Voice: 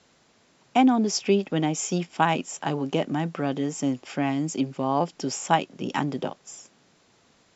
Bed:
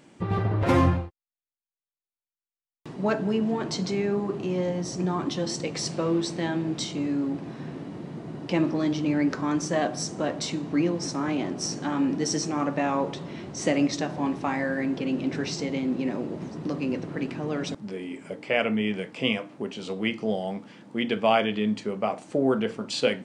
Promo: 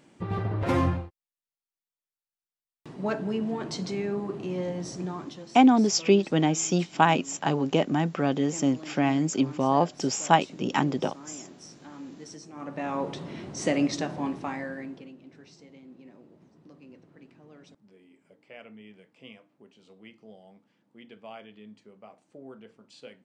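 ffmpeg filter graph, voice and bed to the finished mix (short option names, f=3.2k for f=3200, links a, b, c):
-filter_complex "[0:a]adelay=4800,volume=1.5dB[a];[1:a]volume=12dB,afade=t=out:st=4.87:d=0.6:silence=0.211349,afade=t=in:st=12.52:d=0.67:silence=0.158489,afade=t=out:st=14.01:d=1.14:silence=0.0891251[b];[a][b]amix=inputs=2:normalize=0"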